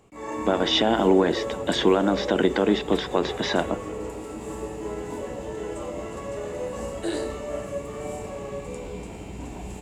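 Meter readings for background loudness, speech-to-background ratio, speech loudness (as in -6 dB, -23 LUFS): -33.0 LUFS, 10.0 dB, -23.0 LUFS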